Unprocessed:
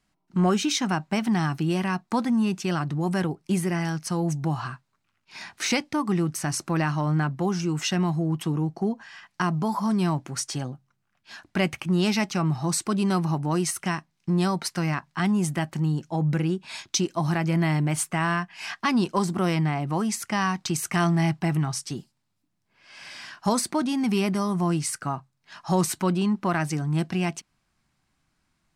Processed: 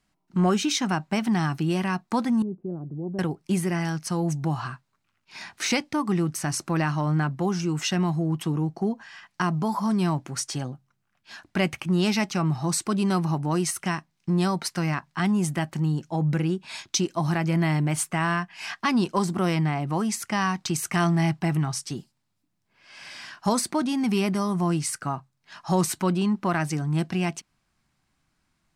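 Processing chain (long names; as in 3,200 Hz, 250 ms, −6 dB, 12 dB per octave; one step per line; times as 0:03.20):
0:02.42–0:03.19: transistor ladder low-pass 570 Hz, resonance 35%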